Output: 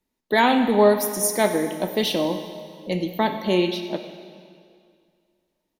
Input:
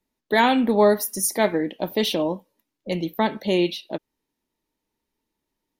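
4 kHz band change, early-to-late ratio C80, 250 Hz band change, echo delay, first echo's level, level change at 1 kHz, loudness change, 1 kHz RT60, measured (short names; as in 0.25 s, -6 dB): +0.5 dB, 9.0 dB, +0.5 dB, 96 ms, -17.5 dB, +1.0 dB, 0.0 dB, 2.1 s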